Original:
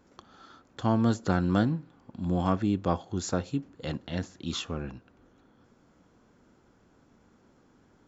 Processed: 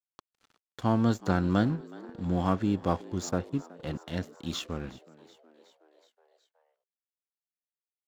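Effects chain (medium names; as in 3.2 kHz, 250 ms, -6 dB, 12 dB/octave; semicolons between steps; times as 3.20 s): 3.29–4.00 s: treble shelf 3.7 kHz -10.5 dB; crossover distortion -47 dBFS; on a send: frequency-shifting echo 370 ms, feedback 64%, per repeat +79 Hz, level -21 dB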